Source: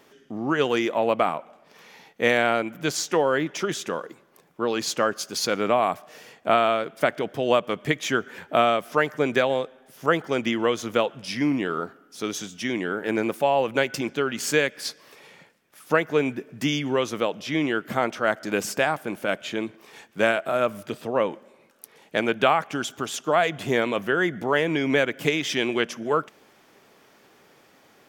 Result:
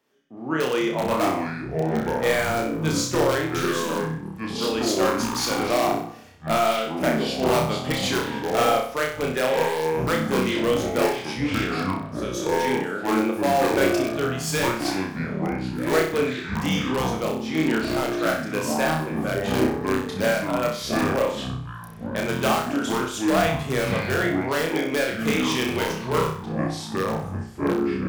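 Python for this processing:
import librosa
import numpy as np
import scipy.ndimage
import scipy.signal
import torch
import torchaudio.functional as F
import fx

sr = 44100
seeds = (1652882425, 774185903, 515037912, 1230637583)

p1 = fx.echo_pitch(x, sr, ms=372, semitones=-6, count=3, db_per_echo=-3.0)
p2 = (np.mod(10.0 ** (12.0 / 20.0) * p1 + 1.0, 2.0) - 1.0) / 10.0 ** (12.0 / 20.0)
p3 = p1 + (p2 * librosa.db_to_amplitude(-4.5))
p4 = fx.room_flutter(p3, sr, wall_m=5.4, rt60_s=0.55)
p5 = fx.band_widen(p4, sr, depth_pct=40)
y = p5 * librosa.db_to_amplitude(-7.0)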